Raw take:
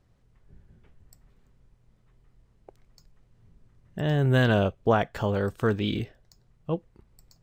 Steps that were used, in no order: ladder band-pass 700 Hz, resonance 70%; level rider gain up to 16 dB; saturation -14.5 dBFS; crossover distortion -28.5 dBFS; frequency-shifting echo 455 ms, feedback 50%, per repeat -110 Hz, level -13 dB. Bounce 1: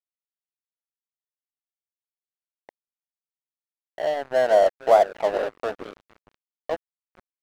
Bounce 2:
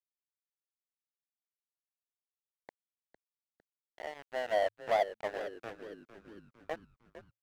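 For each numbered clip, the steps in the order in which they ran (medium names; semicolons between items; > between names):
saturation > ladder band-pass > frequency-shifting echo > level rider > crossover distortion; level rider > saturation > ladder band-pass > crossover distortion > frequency-shifting echo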